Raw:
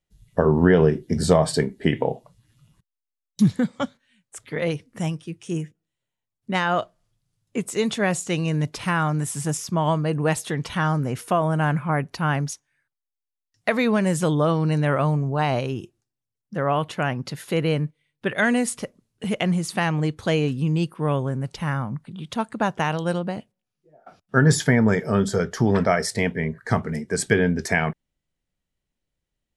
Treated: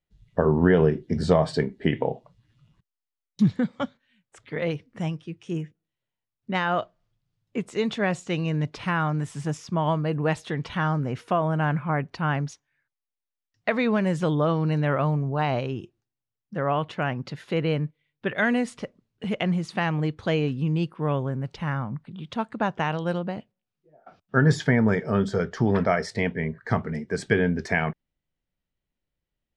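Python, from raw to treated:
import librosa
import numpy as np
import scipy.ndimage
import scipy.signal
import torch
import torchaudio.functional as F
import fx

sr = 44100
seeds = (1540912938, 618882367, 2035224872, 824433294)

y = scipy.signal.sosfilt(scipy.signal.butter(2, 4100.0, 'lowpass', fs=sr, output='sos'), x)
y = y * librosa.db_to_amplitude(-2.5)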